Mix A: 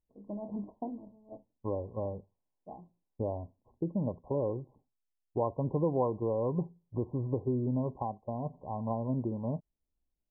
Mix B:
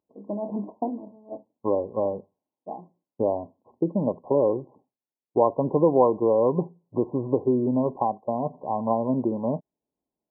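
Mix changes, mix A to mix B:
speech +11.5 dB; master: add high-pass 240 Hz 12 dB/octave

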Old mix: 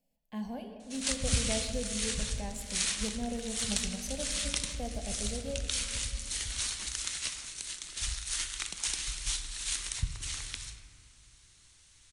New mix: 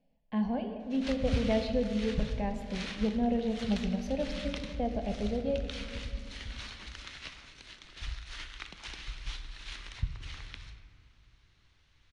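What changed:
speech +8.0 dB; master: add distance through air 290 m

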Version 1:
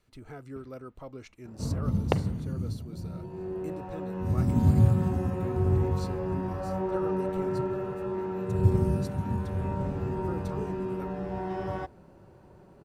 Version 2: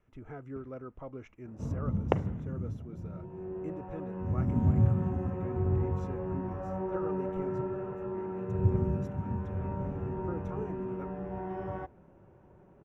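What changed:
second sound -4.0 dB; master: add boxcar filter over 10 samples

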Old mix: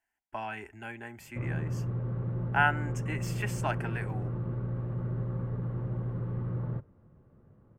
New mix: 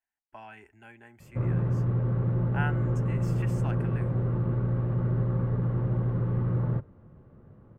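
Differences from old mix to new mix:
speech -9.0 dB; background +6.5 dB

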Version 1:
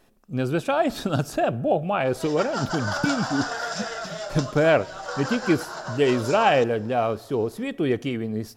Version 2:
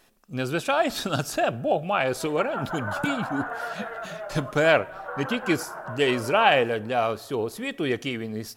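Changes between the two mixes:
background: add Gaussian low-pass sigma 5 samples; master: add tilt shelf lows -5 dB, about 840 Hz

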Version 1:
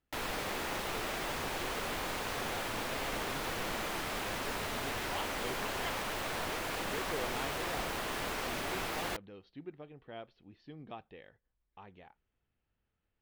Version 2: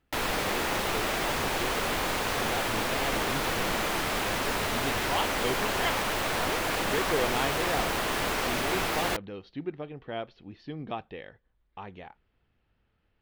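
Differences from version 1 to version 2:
speech +11.0 dB; background +8.0 dB

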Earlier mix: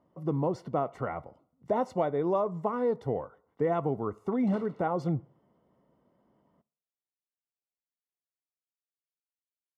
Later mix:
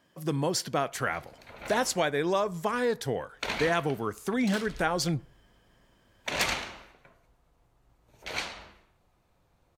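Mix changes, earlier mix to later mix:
first sound: unmuted; master: remove Savitzky-Golay filter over 65 samples

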